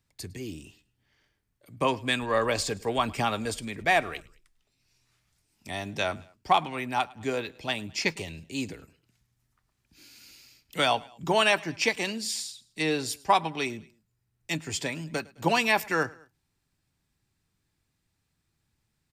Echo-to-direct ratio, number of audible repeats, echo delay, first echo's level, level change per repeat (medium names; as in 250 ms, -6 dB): -22.5 dB, 2, 106 ms, -23.5 dB, -5.5 dB